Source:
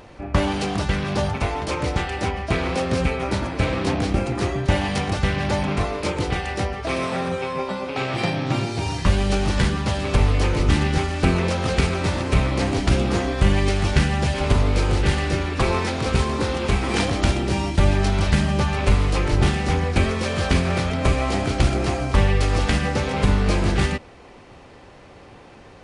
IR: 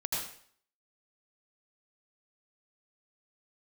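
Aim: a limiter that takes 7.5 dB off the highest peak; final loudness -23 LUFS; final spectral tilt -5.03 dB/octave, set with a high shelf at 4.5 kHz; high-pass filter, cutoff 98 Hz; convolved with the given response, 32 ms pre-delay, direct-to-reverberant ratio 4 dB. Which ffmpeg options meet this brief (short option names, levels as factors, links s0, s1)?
-filter_complex "[0:a]highpass=98,highshelf=f=4500:g=-6,alimiter=limit=0.211:level=0:latency=1,asplit=2[s0][s1];[1:a]atrim=start_sample=2205,adelay=32[s2];[s1][s2]afir=irnorm=-1:irlink=0,volume=0.355[s3];[s0][s3]amix=inputs=2:normalize=0,volume=1.12"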